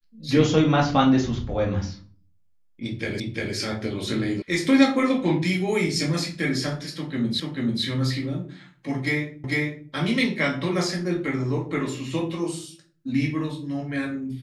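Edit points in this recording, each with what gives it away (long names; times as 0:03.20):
0:03.20: the same again, the last 0.35 s
0:04.42: cut off before it has died away
0:07.40: the same again, the last 0.44 s
0:09.44: the same again, the last 0.45 s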